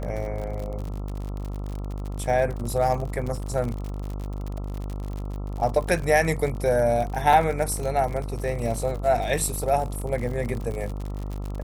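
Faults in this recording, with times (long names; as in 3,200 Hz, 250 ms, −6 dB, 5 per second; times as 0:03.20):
mains buzz 50 Hz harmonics 27 −31 dBFS
surface crackle 63 per second −30 dBFS
0:07.33: drop-out 4.7 ms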